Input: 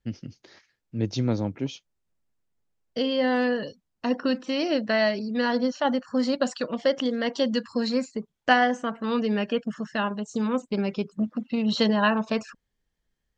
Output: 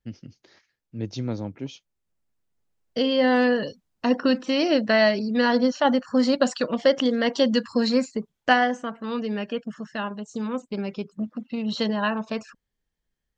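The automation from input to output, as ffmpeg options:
ffmpeg -i in.wav -af "volume=4dB,afade=type=in:start_time=1.63:duration=1.71:silence=0.398107,afade=type=out:start_time=8:duration=0.95:silence=0.446684" out.wav

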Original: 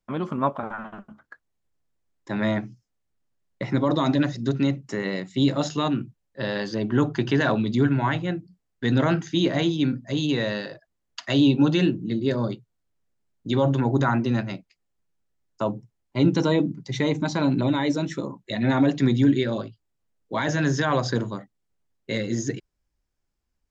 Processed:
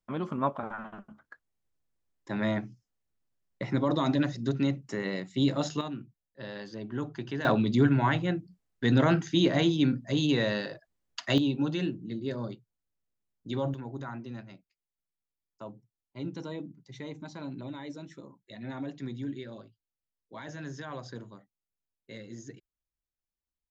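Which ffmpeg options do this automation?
ffmpeg -i in.wav -af "asetnsamples=nb_out_samples=441:pad=0,asendcmd='5.81 volume volume -13dB;7.45 volume volume -2dB;11.38 volume volume -10dB;13.74 volume volume -17.5dB',volume=-5dB" out.wav

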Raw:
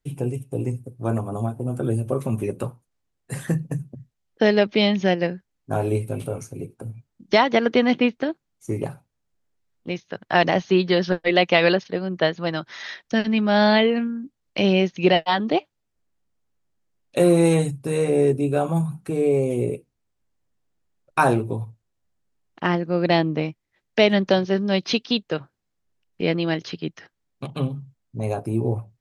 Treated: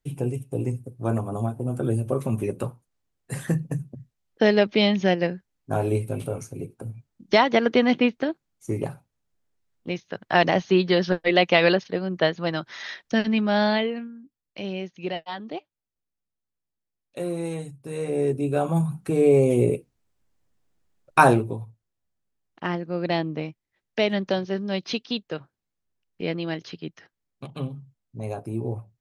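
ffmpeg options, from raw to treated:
ffmpeg -i in.wav -af "volume=15.5dB,afade=type=out:start_time=13.28:duration=0.83:silence=0.251189,afade=type=in:start_time=17.73:duration=0.53:silence=0.398107,afade=type=in:start_time=18.26:duration=1.24:silence=0.375837,afade=type=out:start_time=21.19:duration=0.4:silence=0.334965" out.wav

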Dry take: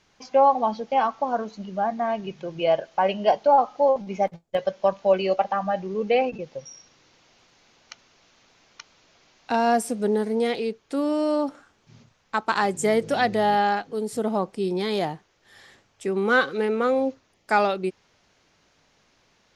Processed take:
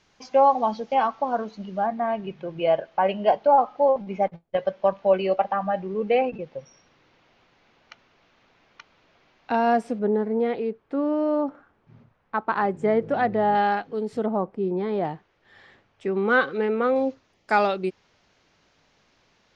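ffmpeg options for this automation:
ffmpeg -i in.wav -af "asetnsamples=nb_out_samples=441:pad=0,asendcmd='0.95 lowpass f 4600;1.86 lowpass f 2800;9.99 lowpass f 1600;13.55 lowpass f 3100;14.26 lowpass f 1300;15.05 lowpass f 2900;16.96 lowpass f 5800',lowpass=8500" out.wav

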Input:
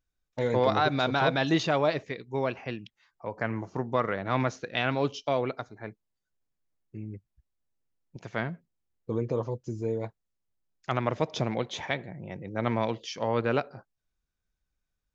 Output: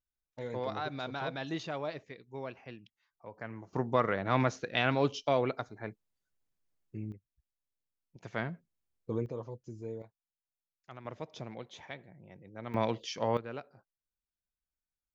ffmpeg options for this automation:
ffmpeg -i in.wav -af "asetnsamples=nb_out_samples=441:pad=0,asendcmd='3.73 volume volume -1dB;7.12 volume volume -11dB;8.23 volume volume -4dB;9.26 volume volume -10.5dB;10.02 volume volume -20dB;11.05 volume volume -14dB;12.74 volume volume -2dB;13.37 volume volume -15dB',volume=-12dB" out.wav

